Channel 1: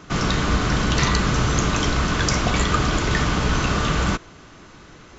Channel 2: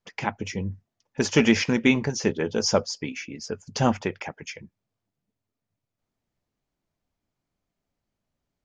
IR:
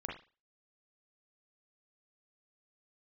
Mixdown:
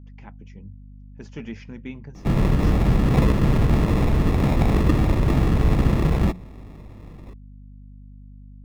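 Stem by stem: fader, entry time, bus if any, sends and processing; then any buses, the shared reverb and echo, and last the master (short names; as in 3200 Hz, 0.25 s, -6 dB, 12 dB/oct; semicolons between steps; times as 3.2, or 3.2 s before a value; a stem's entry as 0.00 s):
-3.0 dB, 2.15 s, no send, sample-and-hold 29×
-19.5 dB, 0.00 s, no send, dry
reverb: off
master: tone controls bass +8 dB, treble -9 dB; notches 60/120/180 Hz; hum 50 Hz, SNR 22 dB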